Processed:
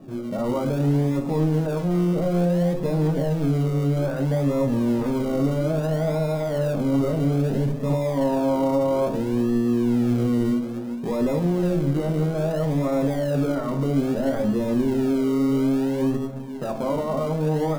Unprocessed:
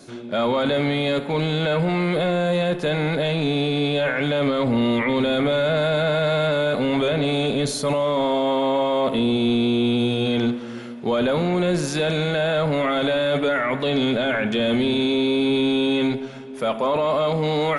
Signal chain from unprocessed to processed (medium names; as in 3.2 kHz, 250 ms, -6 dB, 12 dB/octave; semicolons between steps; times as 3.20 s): low-pass 1.2 kHz 24 dB/octave; tilt EQ -2.5 dB/octave; hum notches 50/100/150 Hz; peak limiter -15.5 dBFS, peak gain reduction 8 dB; in parallel at -10.5 dB: decimation with a swept rate 41×, swing 60% 0.6 Hz; on the sum: flange 0.12 Hz, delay 1 ms, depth 4.9 ms, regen -86%; on a send at -5 dB: reverberation, pre-delay 6 ms